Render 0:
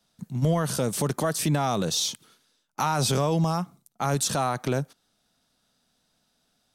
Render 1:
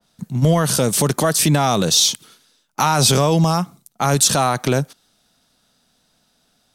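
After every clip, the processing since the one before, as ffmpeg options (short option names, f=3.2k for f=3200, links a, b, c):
-af "adynamicequalizer=threshold=0.00891:dfrequency=2100:dqfactor=0.7:tfrequency=2100:tqfactor=0.7:attack=5:release=100:ratio=0.375:range=2:mode=boostabove:tftype=highshelf,volume=8dB"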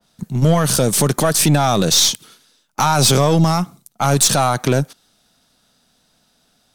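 -af "aeval=exprs='0.794*(cos(1*acos(clip(val(0)/0.794,-1,1)))-cos(1*PI/2))+0.251*(cos(2*acos(clip(val(0)/0.794,-1,1)))-cos(2*PI/2))+0.112*(cos(3*acos(clip(val(0)/0.794,-1,1)))-cos(3*PI/2))':c=same,asoftclip=type=tanh:threshold=-12.5dB,volume=7dB"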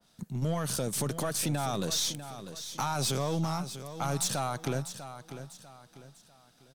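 -filter_complex "[0:a]acompressor=threshold=-44dB:ratio=1.5,asplit=2[a][b];[b]aecho=0:1:646|1292|1938|2584:0.266|0.0958|0.0345|0.0124[c];[a][c]amix=inputs=2:normalize=0,volume=-5dB"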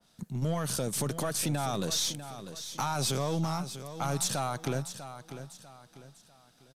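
-af "aresample=32000,aresample=44100"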